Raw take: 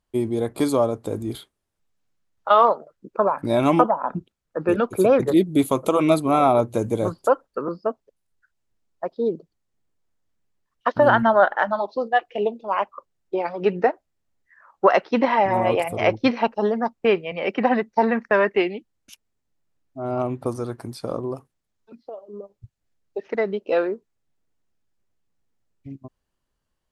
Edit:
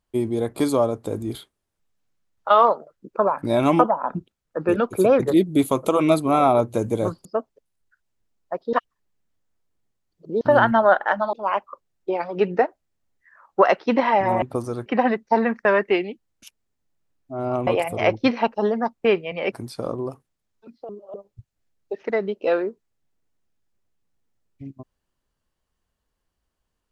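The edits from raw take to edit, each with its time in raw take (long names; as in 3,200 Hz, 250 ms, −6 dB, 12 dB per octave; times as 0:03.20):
0:07.25–0:07.76: remove
0:09.24–0:10.92: reverse
0:11.84–0:12.58: remove
0:15.67–0:17.52: swap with 0:20.33–0:20.77
0:22.14–0:22.39: reverse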